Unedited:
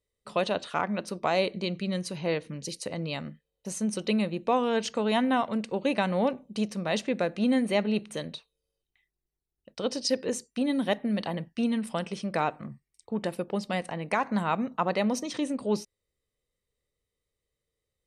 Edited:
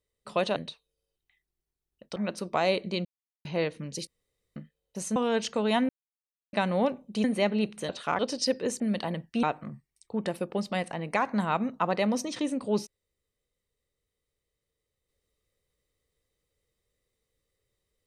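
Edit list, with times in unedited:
0.56–0.86 s: swap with 8.22–9.82 s
1.75–2.15 s: mute
2.77–3.26 s: room tone
3.86–4.57 s: delete
5.30–5.94 s: mute
6.65–7.57 s: delete
10.43–11.03 s: delete
11.66–12.41 s: delete

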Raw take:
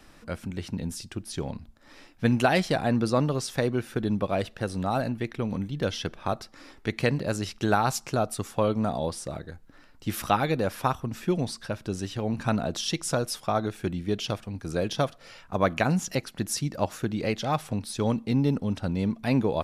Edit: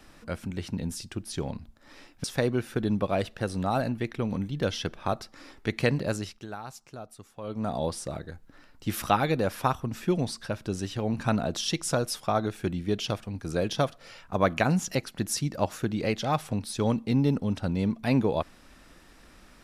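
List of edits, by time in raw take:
2.24–3.44 s: delete
7.27–9.01 s: dip -16 dB, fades 0.39 s

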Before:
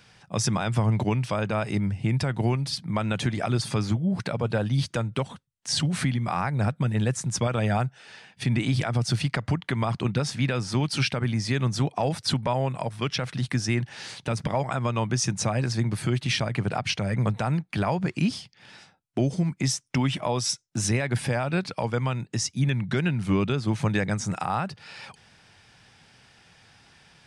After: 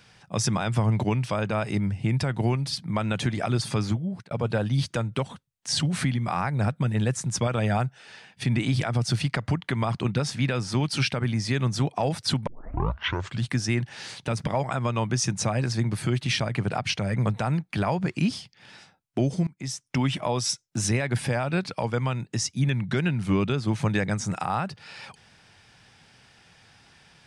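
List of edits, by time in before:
3.89–4.31 s: fade out
12.47 s: tape start 1.01 s
19.47–20.02 s: fade in, from -23.5 dB

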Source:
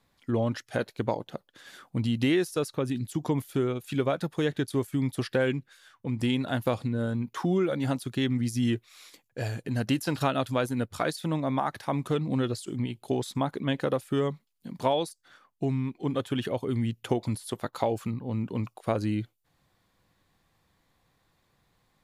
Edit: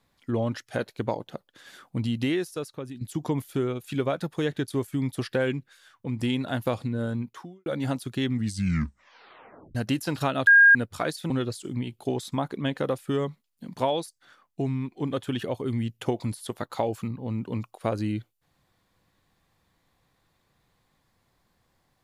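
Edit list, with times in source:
2.04–3.01 s: fade out linear, to -11 dB
7.20–7.66 s: fade out quadratic
8.33 s: tape stop 1.42 s
10.47–10.75 s: bleep 1.62 kHz -11 dBFS
11.30–12.33 s: delete

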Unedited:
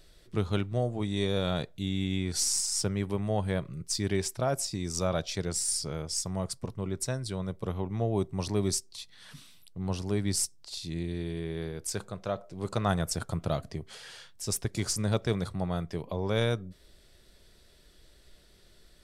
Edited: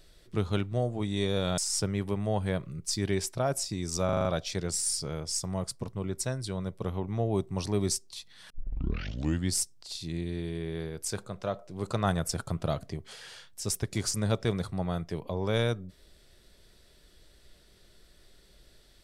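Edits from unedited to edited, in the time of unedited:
1.58–2.60 s: delete
5.07 s: stutter 0.04 s, 6 plays
9.32 s: tape start 1.03 s

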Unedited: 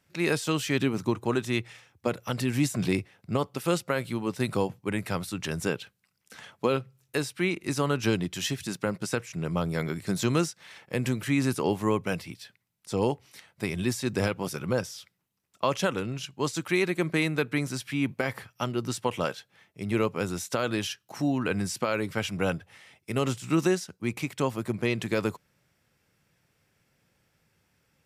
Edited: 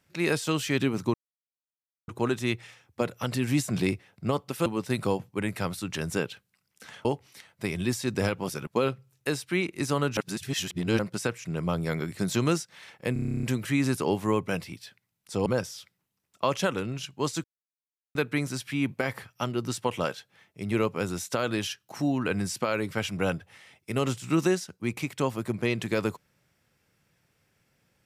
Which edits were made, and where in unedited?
1.14 s: insert silence 0.94 s
3.72–4.16 s: delete
8.05–8.87 s: reverse
11.01 s: stutter 0.03 s, 11 plays
13.04–14.66 s: move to 6.55 s
16.64–17.35 s: mute

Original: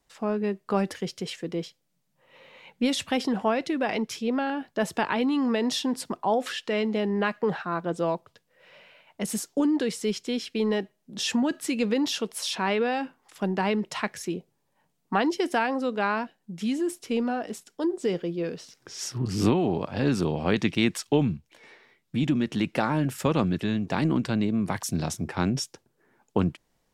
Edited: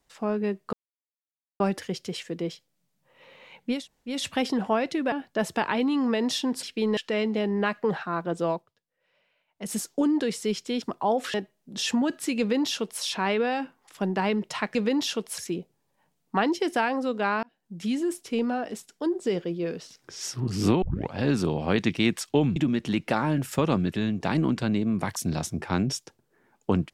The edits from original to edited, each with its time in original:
0.73 s: insert silence 0.87 s
2.89 s: insert room tone 0.38 s, crossfade 0.24 s
3.87–4.53 s: delete
6.04–6.56 s: swap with 10.41–10.75 s
8.10–9.33 s: dip -17 dB, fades 0.19 s
11.80–12.43 s: copy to 14.16 s
16.21–16.58 s: fade in
19.60 s: tape start 0.30 s
21.34–22.23 s: delete

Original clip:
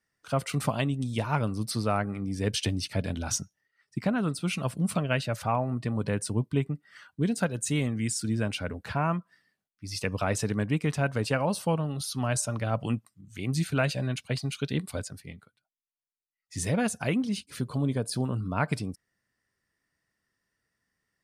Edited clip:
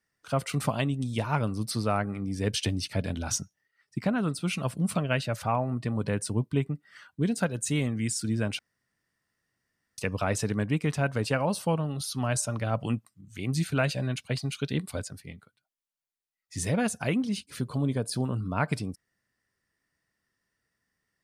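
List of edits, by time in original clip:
8.59–9.98 s: room tone

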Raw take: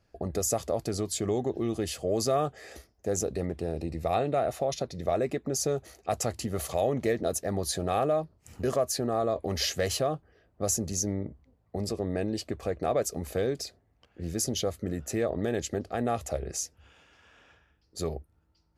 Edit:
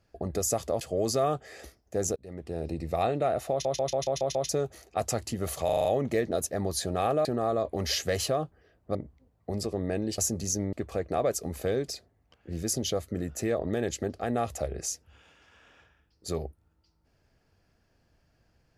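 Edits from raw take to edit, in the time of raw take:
0.81–1.93 s: delete
3.28–3.78 s: fade in
4.63 s: stutter in place 0.14 s, 7 plays
6.77 s: stutter 0.04 s, 6 plays
8.17–8.96 s: delete
10.66–11.21 s: move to 12.44 s

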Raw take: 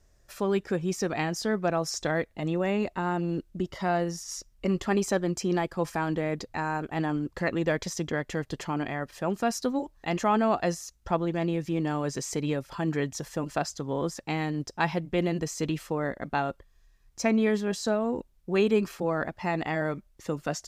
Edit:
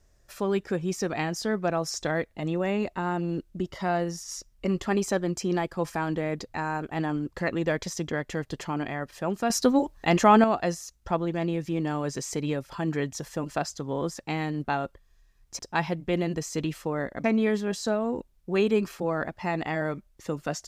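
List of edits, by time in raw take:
9.50–10.44 s: gain +7 dB
16.29–17.24 s: move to 14.64 s

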